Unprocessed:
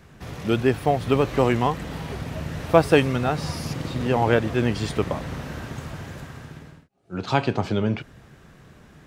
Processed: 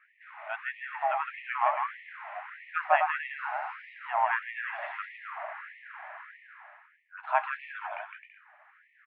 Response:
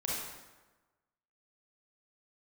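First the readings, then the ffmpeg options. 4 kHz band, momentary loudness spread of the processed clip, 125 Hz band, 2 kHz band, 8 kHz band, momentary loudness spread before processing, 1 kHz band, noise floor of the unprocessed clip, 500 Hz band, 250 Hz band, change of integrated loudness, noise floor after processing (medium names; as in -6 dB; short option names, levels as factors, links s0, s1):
-17.5 dB, 18 LU, under -40 dB, -1.5 dB, under -40 dB, 16 LU, -2.0 dB, -51 dBFS, -15.5 dB, under -40 dB, -8.5 dB, -64 dBFS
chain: -af "aecho=1:1:160|264|331.6|375.5|404.1:0.631|0.398|0.251|0.158|0.1,highpass=f=210:t=q:w=0.5412,highpass=f=210:t=q:w=1.307,lowpass=f=2200:t=q:w=0.5176,lowpass=f=2200:t=q:w=0.7071,lowpass=f=2200:t=q:w=1.932,afreqshift=93,afftfilt=real='re*gte(b*sr/1024,560*pow(1800/560,0.5+0.5*sin(2*PI*1.6*pts/sr)))':imag='im*gte(b*sr/1024,560*pow(1800/560,0.5+0.5*sin(2*PI*1.6*pts/sr)))':win_size=1024:overlap=0.75,volume=0.75"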